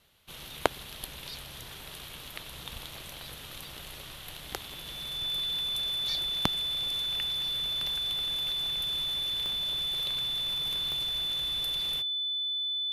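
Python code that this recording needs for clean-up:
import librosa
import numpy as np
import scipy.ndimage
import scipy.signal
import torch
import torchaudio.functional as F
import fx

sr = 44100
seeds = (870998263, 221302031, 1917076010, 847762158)

y = fx.fix_declick_ar(x, sr, threshold=10.0)
y = fx.notch(y, sr, hz=3500.0, q=30.0)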